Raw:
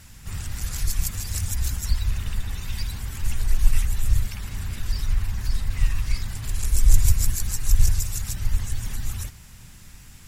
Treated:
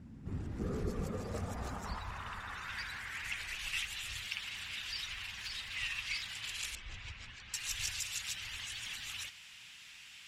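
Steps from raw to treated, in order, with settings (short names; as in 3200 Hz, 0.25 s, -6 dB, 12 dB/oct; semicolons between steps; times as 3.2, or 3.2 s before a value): 0.59–2 small resonant body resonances 220/420/1200 Hz, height 12 dB -> 9 dB, ringing for 25 ms; 6.75–7.54 tape spacing loss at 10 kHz 35 dB; band-pass sweep 240 Hz -> 2900 Hz, 0.01–3.74; low shelf 140 Hz +4 dB; gain +7 dB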